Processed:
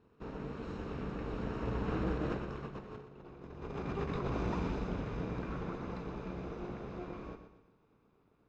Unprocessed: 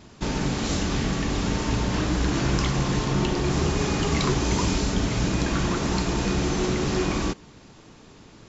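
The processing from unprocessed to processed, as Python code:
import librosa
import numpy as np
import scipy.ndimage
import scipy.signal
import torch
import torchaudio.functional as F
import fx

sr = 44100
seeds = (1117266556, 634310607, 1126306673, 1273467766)

y = fx.lower_of_two(x, sr, delay_ms=0.78)
y = fx.doppler_pass(y, sr, speed_mps=11, closest_m=3.3, pass_at_s=3.16)
y = fx.low_shelf(y, sr, hz=180.0, db=-5.0)
y = fx.over_compress(y, sr, threshold_db=-38.0, ratio=-0.5)
y = scipy.signal.sosfilt(scipy.signal.bessel(2, 1400.0, 'lowpass', norm='mag', fs=sr, output='sos'), y)
y = fx.peak_eq(y, sr, hz=450.0, db=10.0, octaves=0.32)
y = fx.echo_feedback(y, sr, ms=122, feedback_pct=41, wet_db=-9.5)
y = y * librosa.db_to_amplitude(1.0)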